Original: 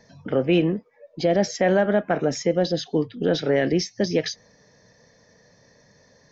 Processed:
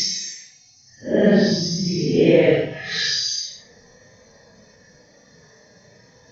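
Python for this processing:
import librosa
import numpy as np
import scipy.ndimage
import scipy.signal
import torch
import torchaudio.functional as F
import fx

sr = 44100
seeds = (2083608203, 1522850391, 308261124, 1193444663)

y = fx.paulstretch(x, sr, seeds[0], factor=6.9, window_s=0.05, from_s=3.83)
y = F.gain(torch.from_numpy(y), 5.5).numpy()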